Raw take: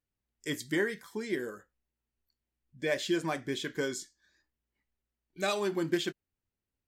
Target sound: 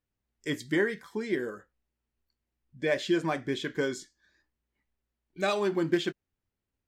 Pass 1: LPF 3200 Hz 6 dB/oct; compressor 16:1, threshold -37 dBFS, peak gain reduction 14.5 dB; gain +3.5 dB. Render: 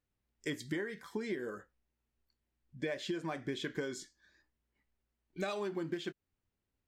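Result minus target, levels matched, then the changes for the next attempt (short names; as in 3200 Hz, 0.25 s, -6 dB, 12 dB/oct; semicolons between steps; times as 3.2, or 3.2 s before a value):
compressor: peak gain reduction +14.5 dB
remove: compressor 16:1, threshold -37 dBFS, peak gain reduction 14.5 dB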